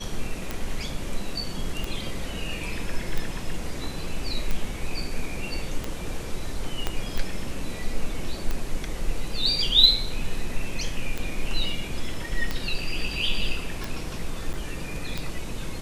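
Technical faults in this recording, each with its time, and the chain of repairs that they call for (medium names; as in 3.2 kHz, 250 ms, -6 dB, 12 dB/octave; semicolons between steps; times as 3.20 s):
tick 45 rpm -14 dBFS
6.87 s: pop -11 dBFS
14.53–14.54 s: dropout 8.9 ms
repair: de-click; interpolate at 14.53 s, 8.9 ms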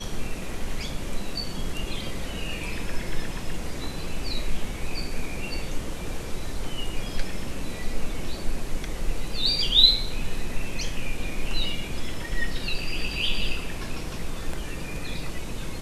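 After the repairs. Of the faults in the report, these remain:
6.87 s: pop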